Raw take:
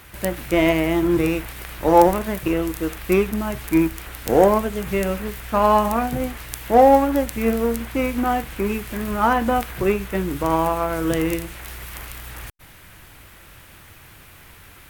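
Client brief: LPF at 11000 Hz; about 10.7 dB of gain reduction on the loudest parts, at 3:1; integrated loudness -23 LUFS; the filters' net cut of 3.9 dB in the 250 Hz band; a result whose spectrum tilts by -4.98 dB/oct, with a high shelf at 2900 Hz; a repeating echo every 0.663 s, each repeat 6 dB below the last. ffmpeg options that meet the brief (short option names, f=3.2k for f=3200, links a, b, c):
-af "lowpass=11k,equalizer=f=250:t=o:g=-5.5,highshelf=f=2.9k:g=-4,acompressor=threshold=-24dB:ratio=3,aecho=1:1:663|1326|1989|2652|3315|3978:0.501|0.251|0.125|0.0626|0.0313|0.0157,volume=4.5dB"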